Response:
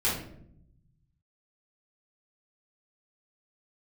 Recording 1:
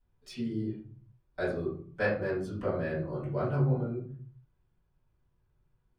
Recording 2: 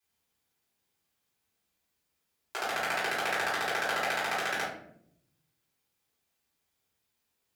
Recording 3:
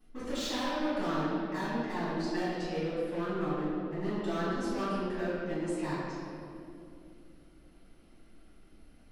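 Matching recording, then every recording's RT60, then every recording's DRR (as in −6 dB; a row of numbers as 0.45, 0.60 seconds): 2; 0.50, 0.70, 2.7 seconds; −12.0, −9.0, −14.0 decibels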